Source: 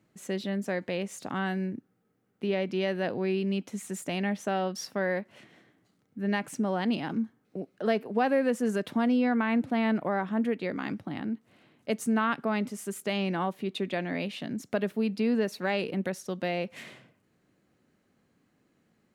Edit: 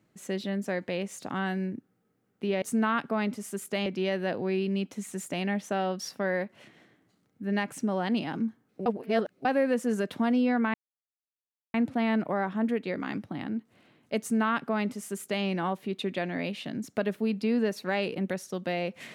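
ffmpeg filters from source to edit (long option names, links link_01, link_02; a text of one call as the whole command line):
ffmpeg -i in.wav -filter_complex "[0:a]asplit=6[link_01][link_02][link_03][link_04][link_05][link_06];[link_01]atrim=end=2.622[link_07];[link_02]atrim=start=11.958:end=13.202[link_08];[link_03]atrim=start=2.618:end=7.622[link_09];[link_04]atrim=start=7.618:end=8.212,asetpts=PTS-STARTPTS,areverse[link_10];[link_05]atrim=start=8.208:end=9.5,asetpts=PTS-STARTPTS,afade=type=out:start_time=1.288:duration=0.004:curve=hsin,apad=pad_dur=1[link_11];[link_06]atrim=start=9.5,asetpts=PTS-STARTPTS,afade=type=in:duration=0.004:curve=hsin[link_12];[link_07][link_08]acrossfade=duration=0.004:curve1=hsin:curve2=hsin[link_13];[link_13][link_09]acrossfade=duration=0.004:curve1=hsin:curve2=hsin[link_14];[link_14][link_10]acrossfade=duration=0.004:curve1=hsin:curve2=hsin[link_15];[link_11][link_12]concat=n=2:v=0:a=1[link_16];[link_15][link_16]acrossfade=duration=0.004:curve1=hsin:curve2=hsin" out.wav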